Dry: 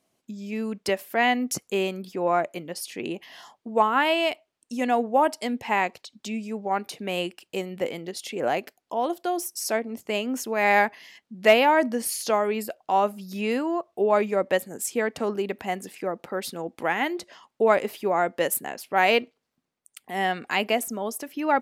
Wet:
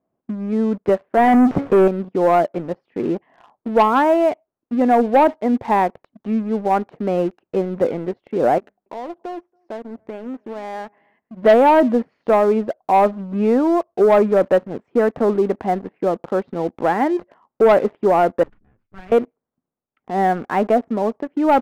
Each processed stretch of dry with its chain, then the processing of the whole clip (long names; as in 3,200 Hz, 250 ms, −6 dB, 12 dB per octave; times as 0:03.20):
0:01.17–0:01.88: tuned comb filter 280 Hz, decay 0.15 s, mix 50% + power curve on the samples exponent 0.35
0:08.58–0:11.43: downward compressor 2.5 to 1, threshold −42 dBFS + mains-hum notches 50/100/150/200 Hz + single-tap delay 281 ms −23.5 dB
0:18.43–0:19.12: lower of the sound and its delayed copy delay 9.6 ms + guitar amp tone stack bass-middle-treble 6-0-2
whole clip: Bessel low-pass filter 970 Hz, order 4; leveller curve on the samples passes 2; level +3.5 dB